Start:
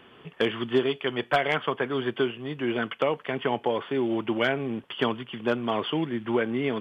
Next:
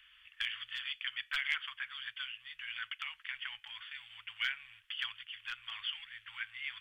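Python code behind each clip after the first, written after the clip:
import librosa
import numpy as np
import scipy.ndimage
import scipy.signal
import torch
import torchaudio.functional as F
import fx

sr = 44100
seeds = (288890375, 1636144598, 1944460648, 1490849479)

y = scipy.signal.sosfilt(scipy.signal.cheby2(4, 80, [200.0, 480.0], 'bandstop', fs=sr, output='sos'), x)
y = y * librosa.db_to_amplitude(-3.5)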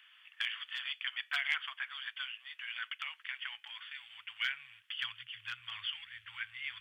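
y = fx.filter_sweep_highpass(x, sr, from_hz=660.0, to_hz=81.0, start_s=2.34, end_s=5.99, q=4.6)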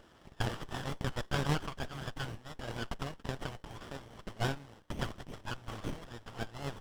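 y = fx.running_max(x, sr, window=17)
y = y * librosa.db_to_amplitude(4.5)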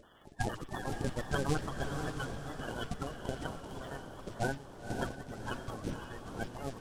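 y = fx.spec_quant(x, sr, step_db=30)
y = fx.echo_diffused(y, sr, ms=522, feedback_pct=44, wet_db=-6)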